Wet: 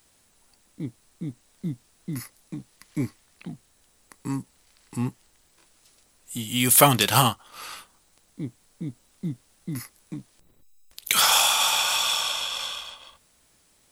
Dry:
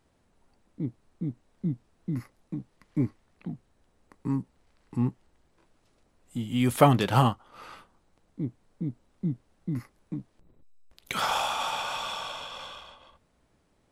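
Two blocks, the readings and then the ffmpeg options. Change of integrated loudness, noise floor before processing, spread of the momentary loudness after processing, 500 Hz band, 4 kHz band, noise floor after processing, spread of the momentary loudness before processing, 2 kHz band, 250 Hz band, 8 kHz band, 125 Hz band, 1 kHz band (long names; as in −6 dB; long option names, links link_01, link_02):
+7.5 dB, −69 dBFS, 23 LU, +0.5 dB, +12.5 dB, −63 dBFS, 17 LU, +8.0 dB, −1.0 dB, +19.5 dB, −1.5 dB, +3.0 dB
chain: -af "crystalizer=i=9.5:c=0,volume=-1.5dB"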